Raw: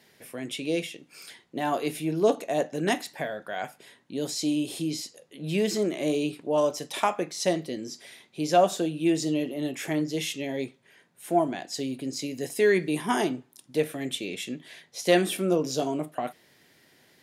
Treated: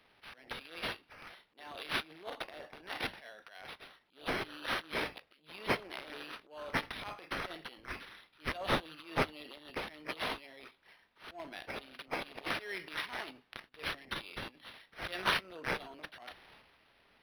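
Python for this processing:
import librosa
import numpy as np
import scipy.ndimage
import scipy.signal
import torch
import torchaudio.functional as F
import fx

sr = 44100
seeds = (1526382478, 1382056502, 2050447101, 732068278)

y = fx.transient(x, sr, attack_db=-11, sustain_db=9)
y = np.diff(y, prepend=0.0)
y = np.interp(np.arange(len(y)), np.arange(len(y))[::6], y[::6])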